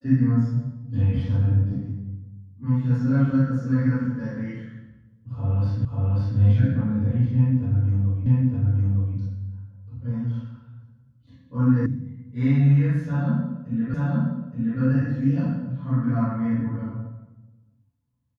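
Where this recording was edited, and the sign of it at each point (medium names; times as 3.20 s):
5.85 s: repeat of the last 0.54 s
8.26 s: repeat of the last 0.91 s
11.86 s: sound stops dead
13.94 s: repeat of the last 0.87 s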